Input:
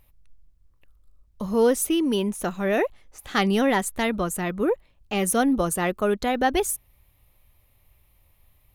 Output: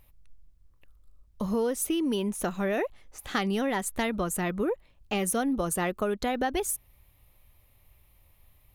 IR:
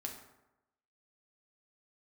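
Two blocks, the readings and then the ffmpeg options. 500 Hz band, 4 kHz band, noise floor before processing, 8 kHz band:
-6.0 dB, -5.5 dB, -62 dBFS, -3.5 dB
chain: -af "acompressor=threshold=0.0562:ratio=5"

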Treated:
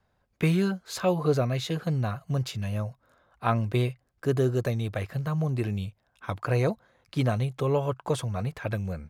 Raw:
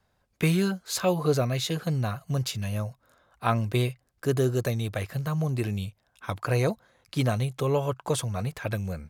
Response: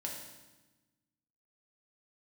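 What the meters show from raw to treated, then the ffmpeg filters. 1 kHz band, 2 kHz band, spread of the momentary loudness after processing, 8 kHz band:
-0.5 dB, -1.5 dB, 8 LU, -7.0 dB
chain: -af "highshelf=f=4300:g=-9.5"

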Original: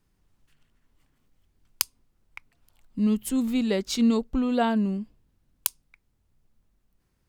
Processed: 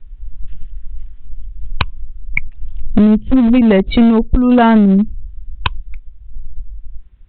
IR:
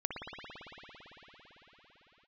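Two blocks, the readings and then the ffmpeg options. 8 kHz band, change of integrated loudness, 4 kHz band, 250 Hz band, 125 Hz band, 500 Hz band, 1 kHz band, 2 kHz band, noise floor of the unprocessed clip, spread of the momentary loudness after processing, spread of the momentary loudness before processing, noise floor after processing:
under -40 dB, +13.0 dB, +7.5 dB, +14.5 dB, no reading, +13.5 dB, +14.0 dB, +16.0 dB, -72 dBFS, 14 LU, 8 LU, -37 dBFS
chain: -filter_complex "[0:a]aemphasis=mode=reproduction:type=bsi,acrossover=split=3000[s0][s1];[s1]acompressor=threshold=0.00141:ratio=4:attack=1:release=60[s2];[s0][s2]amix=inputs=2:normalize=0,afftdn=nr=24:nf=-37,acompressor=threshold=0.0158:ratio=10,aresample=8000,aeval=exprs='clip(val(0),-1,0.0133)':c=same,aresample=44100,crystalizer=i=6.5:c=0,apsyclip=33.5,volume=0.841"

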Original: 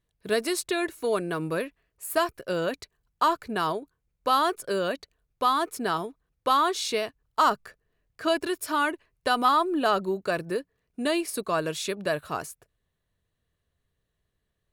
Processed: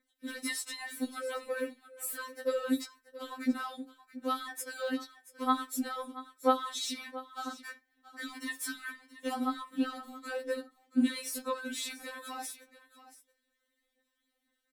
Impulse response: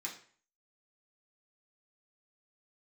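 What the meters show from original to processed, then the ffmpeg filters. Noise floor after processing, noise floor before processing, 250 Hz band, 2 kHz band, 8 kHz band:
-81 dBFS, -79 dBFS, -2.5 dB, -8.5 dB, -3.0 dB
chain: -filter_complex "[0:a]highpass=50,aecho=1:1:4.4:0.55,acompressor=threshold=0.0631:ratio=6,alimiter=level_in=1.19:limit=0.0631:level=0:latency=1:release=17,volume=0.841,acrossover=split=360[s0][s1];[s1]acompressor=threshold=0.0158:ratio=6[s2];[s0][s2]amix=inputs=2:normalize=0,aphaser=in_gain=1:out_gain=1:delay=3.6:decay=0.67:speed=2:type=sinusoidal,aecho=1:1:679:0.158,asplit=2[s3][s4];[1:a]atrim=start_sample=2205,afade=t=out:st=0.14:d=0.01,atrim=end_sample=6615[s5];[s4][s5]afir=irnorm=-1:irlink=0,volume=0.376[s6];[s3][s6]amix=inputs=2:normalize=0,afftfilt=real='re*3.46*eq(mod(b,12),0)':imag='im*3.46*eq(mod(b,12),0)':win_size=2048:overlap=0.75"

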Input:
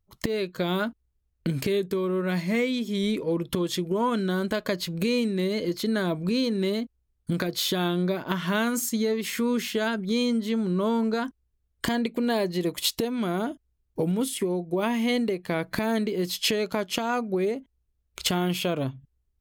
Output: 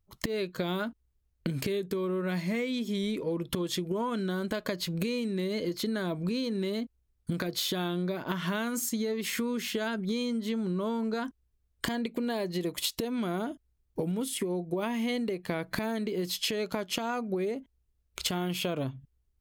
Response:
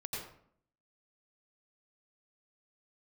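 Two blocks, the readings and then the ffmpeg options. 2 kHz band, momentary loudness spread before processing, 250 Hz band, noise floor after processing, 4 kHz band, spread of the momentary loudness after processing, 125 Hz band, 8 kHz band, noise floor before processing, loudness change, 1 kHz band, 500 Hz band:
-5.0 dB, 5 LU, -5.5 dB, -74 dBFS, -4.5 dB, 5 LU, -4.5 dB, -3.5 dB, -74 dBFS, -5.0 dB, -6.0 dB, -5.5 dB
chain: -af "acompressor=threshold=0.0398:ratio=6"

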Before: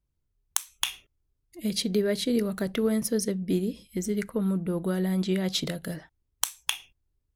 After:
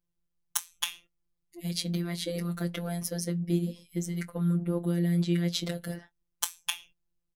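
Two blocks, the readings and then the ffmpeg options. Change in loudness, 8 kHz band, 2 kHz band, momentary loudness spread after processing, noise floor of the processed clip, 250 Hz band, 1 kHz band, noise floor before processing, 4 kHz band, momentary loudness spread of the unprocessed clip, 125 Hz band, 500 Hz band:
-3.0 dB, -3.0 dB, -3.5 dB, 9 LU, -80 dBFS, -3.0 dB, -3.0 dB, -77 dBFS, -3.5 dB, 8 LU, +3.0 dB, -7.5 dB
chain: -filter_complex "[0:a]asplit=2[s0][s1];[s1]adelay=21,volume=0.211[s2];[s0][s2]amix=inputs=2:normalize=0,afftfilt=real='hypot(re,im)*cos(PI*b)':imag='0':win_size=1024:overlap=0.75"

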